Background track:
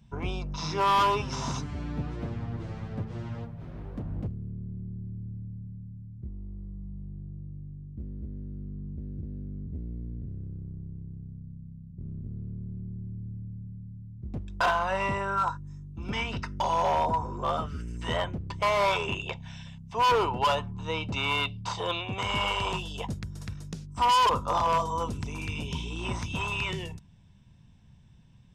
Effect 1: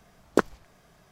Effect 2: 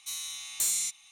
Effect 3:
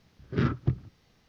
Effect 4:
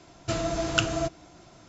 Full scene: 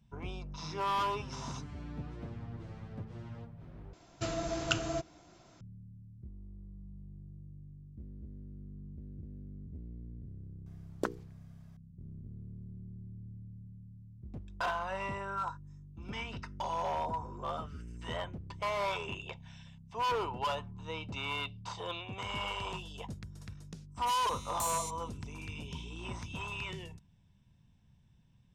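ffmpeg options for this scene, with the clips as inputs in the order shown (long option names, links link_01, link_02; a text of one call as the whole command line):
ffmpeg -i bed.wav -i cue0.wav -i cue1.wav -i cue2.wav -i cue3.wav -filter_complex "[0:a]volume=-9dB[link_01];[1:a]bandreject=frequency=60:width_type=h:width=6,bandreject=frequency=120:width_type=h:width=6,bandreject=frequency=180:width_type=h:width=6,bandreject=frequency=240:width_type=h:width=6,bandreject=frequency=300:width_type=h:width=6,bandreject=frequency=360:width_type=h:width=6,bandreject=frequency=420:width_type=h:width=6,bandreject=frequency=480:width_type=h:width=6[link_02];[link_01]asplit=2[link_03][link_04];[link_03]atrim=end=3.934[link_05];[4:a]atrim=end=1.68,asetpts=PTS-STARTPTS,volume=-7dB[link_06];[link_04]atrim=start=5.606[link_07];[link_02]atrim=end=1.11,asetpts=PTS-STARTPTS,volume=-11.5dB,afade=type=in:duration=0.004:curve=hsin,afade=type=out:start_time=1.106:duration=0.004:curve=hsin,adelay=470106S[link_08];[2:a]atrim=end=1.11,asetpts=PTS-STARTPTS,volume=-10dB,afade=type=in:duration=0.004:curve=hsin,afade=type=out:start_time=1.106:duration=0.004:curve=hsin,adelay=24000[link_09];[link_05][link_06]acrossfade=duration=0.004:curve1=hsin:curve2=hsin[link_10];[link_10][link_07]acrossfade=duration=0.004:curve1=hsin:curve2=hsin[link_11];[link_11][link_08][link_09]amix=inputs=3:normalize=0" out.wav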